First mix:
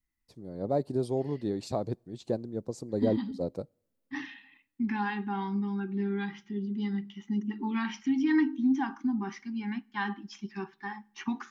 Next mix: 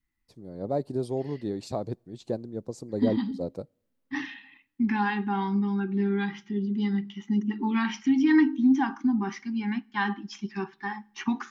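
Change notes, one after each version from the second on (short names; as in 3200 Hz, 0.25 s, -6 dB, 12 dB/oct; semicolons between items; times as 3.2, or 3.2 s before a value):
second voice +5.0 dB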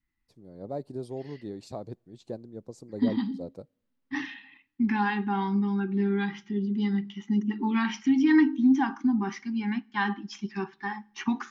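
first voice -6.5 dB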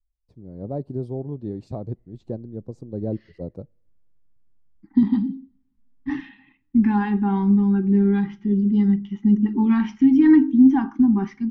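second voice: entry +1.95 s; master: add tilt -4 dB/oct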